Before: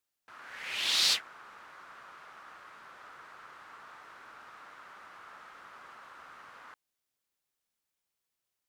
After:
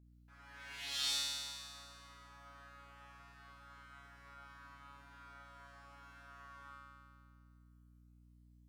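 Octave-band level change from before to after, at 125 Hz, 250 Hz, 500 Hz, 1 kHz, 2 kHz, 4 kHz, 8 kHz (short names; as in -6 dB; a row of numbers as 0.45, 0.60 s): +8.0, -2.0, -9.0, -7.5, -10.5, -9.0, -6.5 dB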